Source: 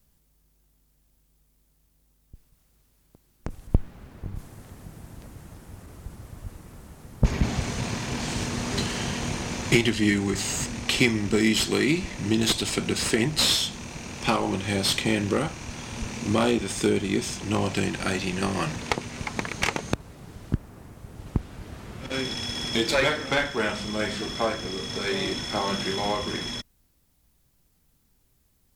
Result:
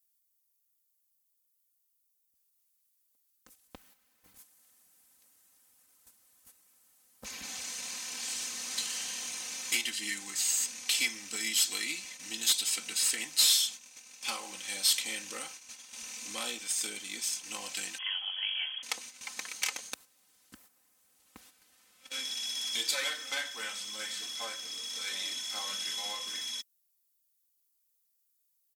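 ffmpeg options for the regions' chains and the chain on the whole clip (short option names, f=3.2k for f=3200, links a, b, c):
-filter_complex "[0:a]asettb=1/sr,asplit=3[a][b][c];[a]atrim=end=17.984[d];[b]atrim=start=17.98:end=18.83,asetpts=PTS-STARTPTS,afade=t=in:d=0.004:c=qsin,afade=t=out:st=0.846:d=0.004:c=qsin,highshelf=f=2.2k:g=-7,lowpass=f=2.9k:t=q:w=0.5098,lowpass=f=2.9k:t=q:w=0.6013,lowpass=f=2.9k:t=q:w=0.9,lowpass=f=2.9k:t=q:w=2.563,afreqshift=-3400[e];[c]atrim=start=18.826[f];[d][e]acrossfade=d=0.004:c1=hsin:c2=qsin[g];[g][f]acrossfade=d=0.004:c1=qsin:c2=hsin,agate=range=-10dB:threshold=-35dB:ratio=16:detection=peak,aderivative,aecho=1:1:3.9:0.68"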